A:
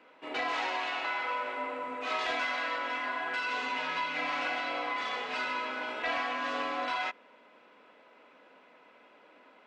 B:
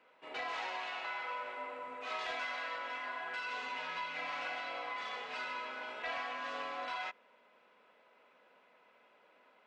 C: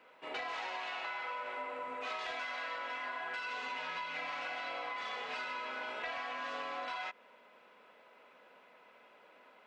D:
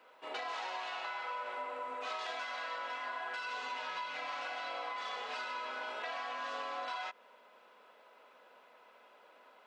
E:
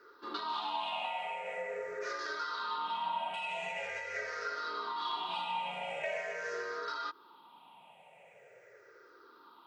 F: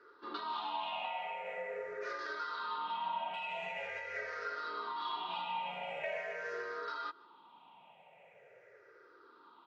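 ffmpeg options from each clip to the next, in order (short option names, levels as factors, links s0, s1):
-af "equalizer=f=290:t=o:w=0.46:g=-9,volume=0.447"
-af "acompressor=threshold=0.00794:ratio=6,volume=1.78"
-af "highpass=f=520:p=1,equalizer=f=2200:w=1.6:g=-6.5,volume=1.41"
-af "afftfilt=real='re*pow(10,21/40*sin(2*PI*(0.57*log(max(b,1)*sr/1024/100)/log(2)-(-0.44)*(pts-256)/sr)))':imag='im*pow(10,21/40*sin(2*PI*(0.57*log(max(b,1)*sr/1024/100)/log(2)-(-0.44)*(pts-256)/sr)))':win_size=1024:overlap=0.75,afreqshift=-75,volume=0.794"
-filter_complex "[0:a]lowpass=3900,asplit=2[s0][s1];[s1]adelay=151.6,volume=0.0708,highshelf=f=4000:g=-3.41[s2];[s0][s2]amix=inputs=2:normalize=0,volume=0.794"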